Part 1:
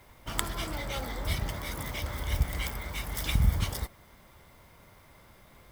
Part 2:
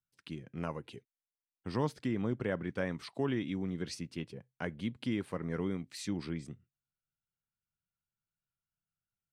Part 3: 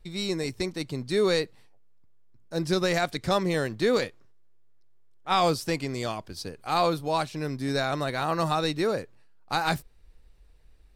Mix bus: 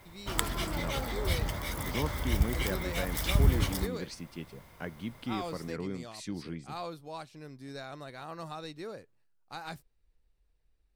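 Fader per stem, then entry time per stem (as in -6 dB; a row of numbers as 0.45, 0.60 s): +0.5, -2.0, -15.5 dB; 0.00, 0.20, 0.00 s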